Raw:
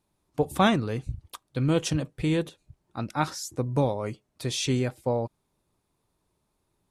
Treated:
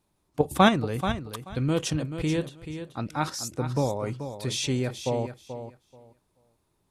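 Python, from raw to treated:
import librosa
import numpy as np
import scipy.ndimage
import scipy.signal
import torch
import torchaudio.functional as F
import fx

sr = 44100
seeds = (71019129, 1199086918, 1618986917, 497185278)

p1 = fx.level_steps(x, sr, step_db=20)
p2 = x + F.gain(torch.from_numpy(p1), 2.0).numpy()
p3 = fx.echo_feedback(p2, sr, ms=433, feedback_pct=18, wet_db=-10)
y = F.gain(torch.from_numpy(p3), -3.0).numpy()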